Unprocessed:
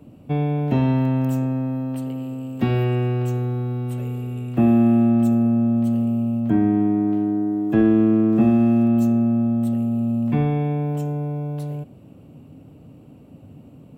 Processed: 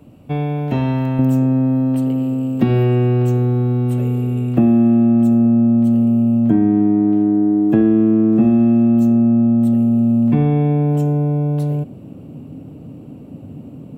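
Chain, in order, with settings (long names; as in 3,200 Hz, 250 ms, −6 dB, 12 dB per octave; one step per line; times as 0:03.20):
parametric band 240 Hz −3.5 dB 2.7 octaves, from 0:01.19 +7 dB
downward compressor 3 to 1, threshold −16 dBFS, peak gain reduction 8 dB
level +4 dB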